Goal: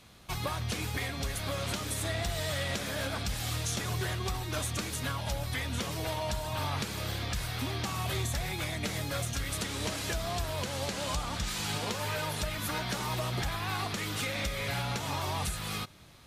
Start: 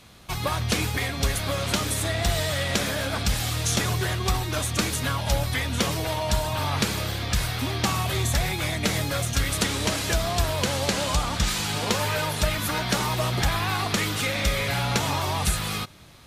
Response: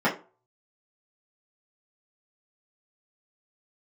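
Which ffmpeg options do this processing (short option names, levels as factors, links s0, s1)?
-af "alimiter=limit=0.141:level=0:latency=1:release=280,volume=0.531"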